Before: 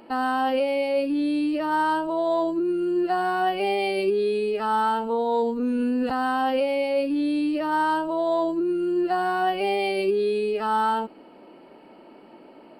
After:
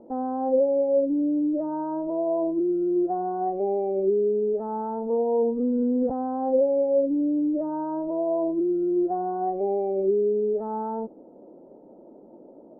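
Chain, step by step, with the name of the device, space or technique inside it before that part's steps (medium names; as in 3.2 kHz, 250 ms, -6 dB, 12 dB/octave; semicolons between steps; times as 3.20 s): under water (low-pass 690 Hz 24 dB/octave; peaking EQ 520 Hz +4.5 dB 0.28 oct)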